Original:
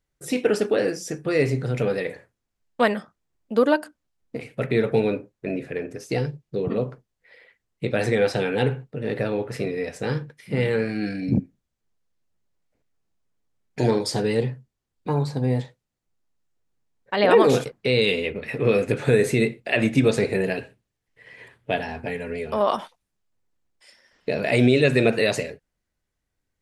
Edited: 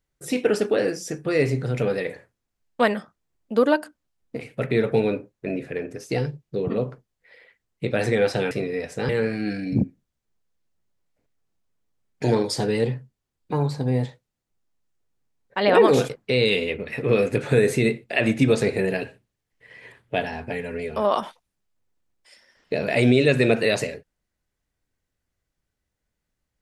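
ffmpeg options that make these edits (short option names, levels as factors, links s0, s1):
-filter_complex "[0:a]asplit=3[s0][s1][s2];[s0]atrim=end=8.512[s3];[s1]atrim=start=9.548:end=10.132[s4];[s2]atrim=start=10.648[s5];[s3][s4]acrossfade=d=0.004:c1=hsin:c2=hsin[s6];[s6][s5]acrossfade=d=0.004:c1=hsin:c2=hsin"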